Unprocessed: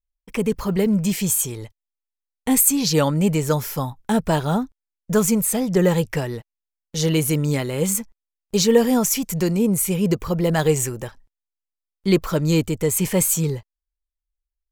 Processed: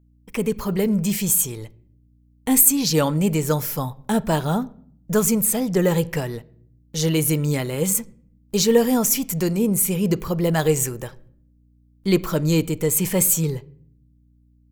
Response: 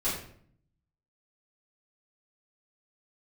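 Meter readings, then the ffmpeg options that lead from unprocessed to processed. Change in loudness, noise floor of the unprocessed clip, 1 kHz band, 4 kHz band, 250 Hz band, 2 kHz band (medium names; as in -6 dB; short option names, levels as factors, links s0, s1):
0.0 dB, under -85 dBFS, -1.0 dB, -0.5 dB, -1.0 dB, -1.0 dB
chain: -filter_complex "[0:a]highshelf=f=11000:g=8.5,aeval=exprs='val(0)+0.002*(sin(2*PI*60*n/s)+sin(2*PI*2*60*n/s)/2+sin(2*PI*3*60*n/s)/3+sin(2*PI*4*60*n/s)/4+sin(2*PI*5*60*n/s)/5)':c=same,asplit=2[s0][s1];[1:a]atrim=start_sample=2205,lowpass=4700[s2];[s1][s2]afir=irnorm=-1:irlink=0,volume=0.0596[s3];[s0][s3]amix=inputs=2:normalize=0,volume=0.841"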